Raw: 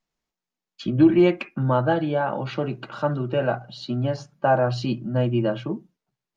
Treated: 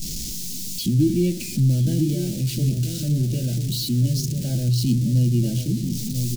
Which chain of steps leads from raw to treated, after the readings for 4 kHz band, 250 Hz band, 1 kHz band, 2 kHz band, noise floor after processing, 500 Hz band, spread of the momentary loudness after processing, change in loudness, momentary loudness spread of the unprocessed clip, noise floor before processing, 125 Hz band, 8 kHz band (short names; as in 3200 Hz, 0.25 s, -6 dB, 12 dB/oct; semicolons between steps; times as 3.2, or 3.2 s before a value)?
+7.0 dB, +0.5 dB, under -30 dB, under -10 dB, -30 dBFS, -10.0 dB, 7 LU, +1.0 dB, 12 LU, under -85 dBFS, +7.5 dB, n/a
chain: zero-crossing step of -23 dBFS; Chebyshev band-stop 190–5400 Hz, order 2; outdoor echo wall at 170 m, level -7 dB; gain +3.5 dB